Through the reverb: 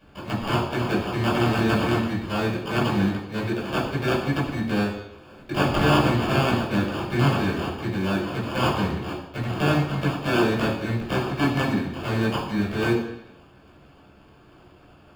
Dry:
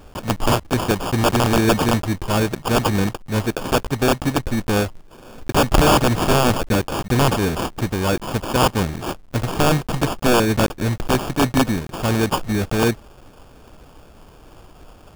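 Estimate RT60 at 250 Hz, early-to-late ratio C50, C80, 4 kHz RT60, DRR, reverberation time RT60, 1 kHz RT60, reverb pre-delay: 0.80 s, 5.0 dB, 7.5 dB, 0.90 s, -7.0 dB, 0.85 s, 0.85 s, 12 ms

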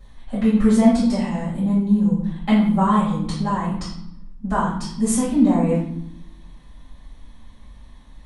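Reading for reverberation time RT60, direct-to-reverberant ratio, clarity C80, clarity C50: 0.75 s, -11.5 dB, 6.5 dB, 3.0 dB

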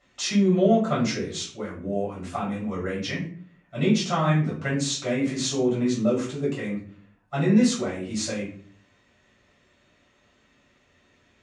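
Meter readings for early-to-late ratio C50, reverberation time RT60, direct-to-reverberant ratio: 6.5 dB, 0.45 s, -7.0 dB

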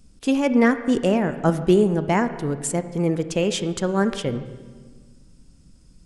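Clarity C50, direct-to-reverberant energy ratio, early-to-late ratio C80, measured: 11.5 dB, 10.5 dB, 13.0 dB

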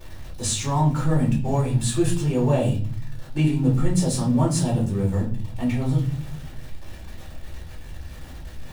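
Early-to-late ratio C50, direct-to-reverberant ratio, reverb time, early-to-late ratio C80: 8.5 dB, -5.5 dB, 0.45 s, 14.0 dB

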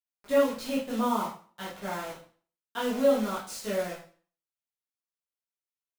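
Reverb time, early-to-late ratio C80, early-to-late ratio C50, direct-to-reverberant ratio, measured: 0.40 s, 9.5 dB, 4.0 dB, -9.0 dB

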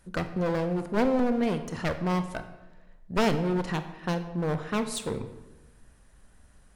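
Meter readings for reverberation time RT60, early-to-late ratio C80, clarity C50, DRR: 1.1 s, 12.5 dB, 11.0 dB, 8.5 dB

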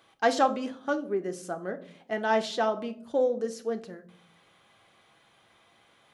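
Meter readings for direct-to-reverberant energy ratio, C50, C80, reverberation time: 6.5 dB, 16.0 dB, 20.0 dB, 0.60 s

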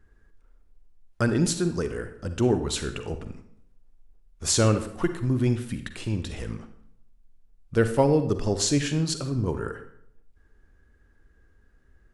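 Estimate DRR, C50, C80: 9.0 dB, 10.0 dB, 13.0 dB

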